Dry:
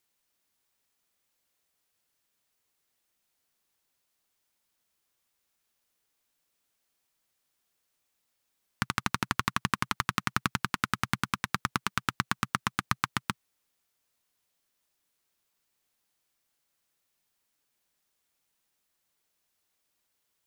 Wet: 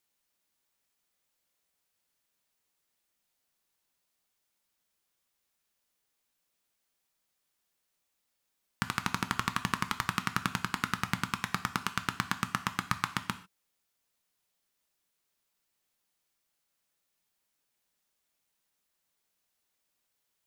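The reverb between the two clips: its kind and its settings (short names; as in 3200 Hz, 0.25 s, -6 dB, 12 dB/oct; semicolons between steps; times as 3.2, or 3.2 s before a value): non-linear reverb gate 0.17 s falling, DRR 9 dB; gain -2.5 dB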